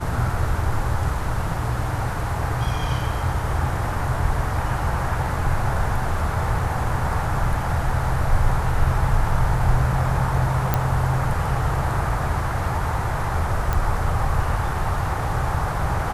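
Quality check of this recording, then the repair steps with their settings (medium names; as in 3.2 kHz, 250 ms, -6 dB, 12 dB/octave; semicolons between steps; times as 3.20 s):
10.74 s: pop -5 dBFS
13.73 s: pop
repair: de-click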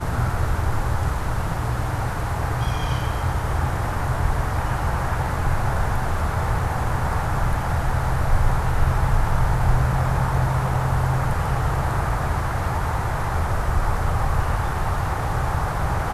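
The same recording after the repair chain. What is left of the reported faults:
nothing left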